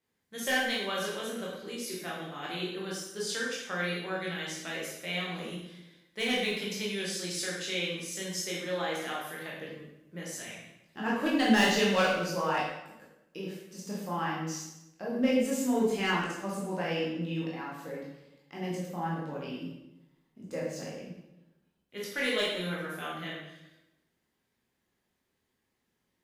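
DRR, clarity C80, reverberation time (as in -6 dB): -5.5 dB, 4.0 dB, 0.95 s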